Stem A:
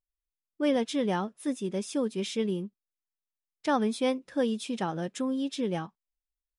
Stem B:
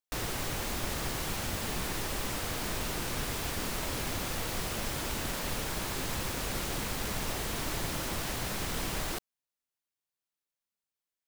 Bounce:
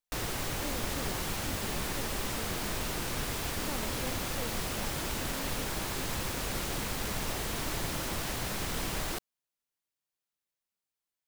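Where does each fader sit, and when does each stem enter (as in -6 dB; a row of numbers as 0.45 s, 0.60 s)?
-16.0 dB, 0.0 dB; 0.00 s, 0.00 s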